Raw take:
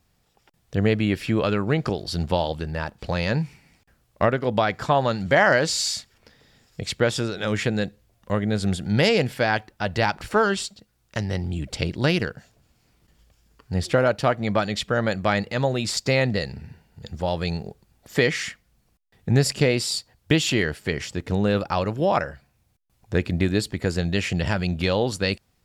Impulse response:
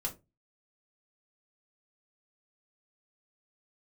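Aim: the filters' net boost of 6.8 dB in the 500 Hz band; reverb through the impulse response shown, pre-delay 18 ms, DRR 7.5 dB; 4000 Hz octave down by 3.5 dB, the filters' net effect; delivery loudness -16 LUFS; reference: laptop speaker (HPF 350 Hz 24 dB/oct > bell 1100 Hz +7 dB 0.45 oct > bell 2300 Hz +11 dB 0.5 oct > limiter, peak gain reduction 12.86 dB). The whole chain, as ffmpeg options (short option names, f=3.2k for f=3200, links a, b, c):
-filter_complex "[0:a]equalizer=f=500:t=o:g=8,equalizer=f=4k:t=o:g=-7.5,asplit=2[a][b];[1:a]atrim=start_sample=2205,adelay=18[c];[b][c]afir=irnorm=-1:irlink=0,volume=-9dB[d];[a][d]amix=inputs=2:normalize=0,highpass=f=350:w=0.5412,highpass=f=350:w=1.3066,equalizer=f=1.1k:t=o:w=0.45:g=7,equalizer=f=2.3k:t=o:w=0.5:g=11,volume=8dB,alimiter=limit=-4dB:level=0:latency=1"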